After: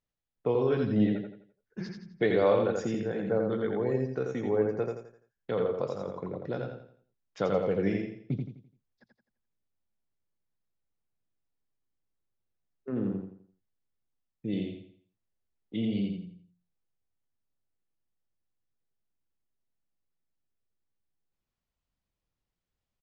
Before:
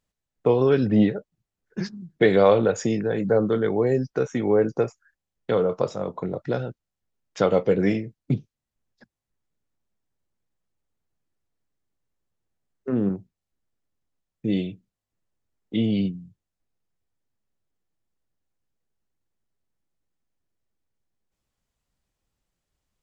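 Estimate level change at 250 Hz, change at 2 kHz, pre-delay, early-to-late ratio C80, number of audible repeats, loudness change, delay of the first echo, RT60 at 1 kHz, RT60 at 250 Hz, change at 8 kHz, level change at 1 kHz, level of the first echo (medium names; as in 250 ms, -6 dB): -7.0 dB, -7.5 dB, no reverb, no reverb, 4, -7.0 dB, 85 ms, no reverb, no reverb, no reading, -7.5 dB, -4.0 dB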